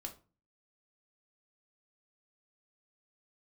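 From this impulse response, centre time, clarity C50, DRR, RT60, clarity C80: 10 ms, 13.0 dB, 2.5 dB, 0.35 s, 18.5 dB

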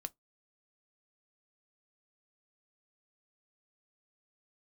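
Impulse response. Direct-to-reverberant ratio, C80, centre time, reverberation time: 11.0 dB, 45.5 dB, 2 ms, 0.15 s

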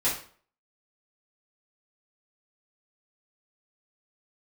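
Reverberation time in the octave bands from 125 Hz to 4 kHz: 0.45, 0.45, 0.50, 0.45, 0.40, 0.40 seconds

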